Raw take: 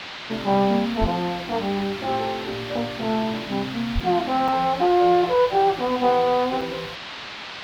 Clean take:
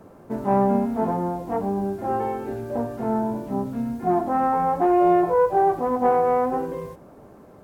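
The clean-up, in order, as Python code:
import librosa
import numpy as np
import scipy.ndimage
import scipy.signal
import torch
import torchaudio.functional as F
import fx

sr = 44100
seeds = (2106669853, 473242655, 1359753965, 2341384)

y = fx.highpass(x, sr, hz=140.0, slope=24, at=(1.0, 1.12), fade=0.02)
y = fx.highpass(y, sr, hz=140.0, slope=24, at=(3.94, 4.06), fade=0.02)
y = fx.fix_interpolate(y, sr, at_s=(4.0, 4.48, 6.61), length_ms=4.3)
y = fx.noise_reduce(y, sr, print_start_s=6.99, print_end_s=7.49, reduce_db=11.0)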